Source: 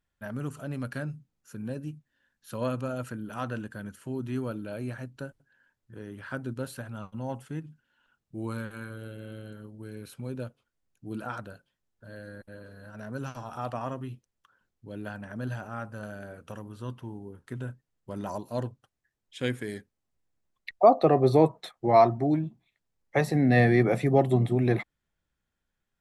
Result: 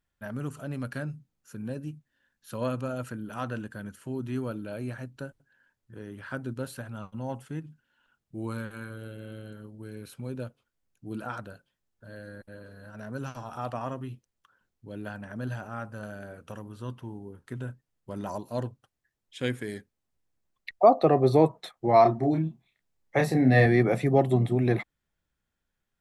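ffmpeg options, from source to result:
-filter_complex "[0:a]asettb=1/sr,asplit=3[a][b][c];[a]atrim=end=22.024[d];[b]atrim=start=22.02:end=23.66,asetpts=PTS-STARTPTS,afade=t=in:d=0.004:c=qsin,afade=t=out:st=1.636:d=0.004:c=qsin,asplit=2[e][f];[f]adelay=31,volume=-5dB[g];[e][g]amix=inputs=2:normalize=0,atrim=end_sample=72324[h];[c]atrim=start=23.656[i];[d][h]acrossfade=d=0.004:c1=hsin:c2=qsin[j];[j][i]acrossfade=d=0.004:c1=qsin:c2=hsin"

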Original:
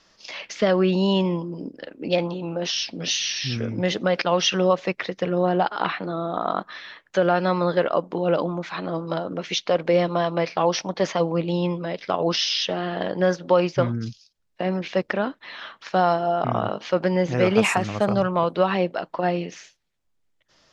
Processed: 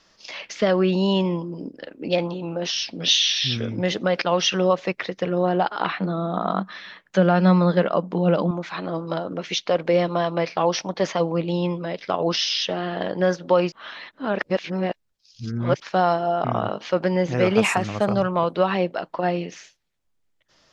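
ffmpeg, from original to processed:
-filter_complex "[0:a]asettb=1/sr,asplit=3[a][b][c];[a]atrim=end=3.034[d];[b]atrim=start=3.03:end=3.76,asetpts=PTS-STARTPTS,afade=t=in:d=0.004:c=qsin,afade=t=out:st=0.726:d=0.004:c=qsin,equalizer=f=3.5k:t=o:w=0.38:g=12[e];[c]atrim=start=3.756[f];[d][e]acrossfade=d=0.004:c1=hsin:c2=qsin[g];[g][f]acrossfade=d=0.004:c1=qsin:c2=hsin,asettb=1/sr,asplit=3[h][i][j];[h]atrim=end=5.994[k];[i]atrim=start=5.99:end=8.51,asetpts=PTS-STARTPTS,afade=t=in:d=0.004:c=qsin,afade=t=out:st=2.516:d=0.004:c=qsin,equalizer=f=190:w=4.3:g=12.5[l];[j]atrim=start=8.506[m];[k][l]acrossfade=d=0.004:c1=hsin:c2=qsin[n];[n][m]acrossfade=d=0.004:c1=qsin:c2=hsin,asplit=3[o][p][q];[o]atrim=end=13.722[r];[p]atrim=start=13.718:end=15.802,asetpts=PTS-STARTPTS,areverse[s];[q]atrim=start=15.798[t];[r][s]acrossfade=d=0.004:c1=hsin:c2=hsin[u];[u][t]acrossfade=d=0.004:c1=hsin:c2=hsin"

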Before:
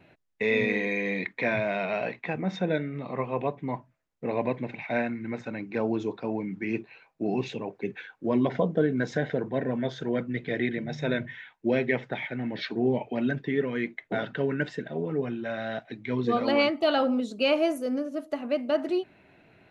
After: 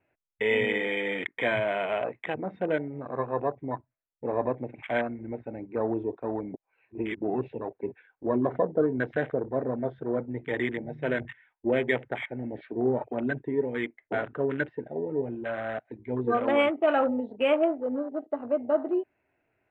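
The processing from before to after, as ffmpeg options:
-filter_complex "[0:a]asplit=3[a][b][c];[a]atrim=end=6.542[d];[b]atrim=start=6.538:end=7.222,asetpts=PTS-STARTPTS,areverse[e];[c]atrim=start=7.218[f];[d][e]acrossfade=d=0.004:c1=hsin:c2=hsin[g];[g][f]acrossfade=d=0.004:c1=hsin:c2=hsin,lowpass=f=2.6k:w=0.5412,lowpass=f=2.6k:w=1.3066,afwtdn=0.0178,equalizer=f=180:t=o:w=0.76:g=-11.5,volume=1.5dB"

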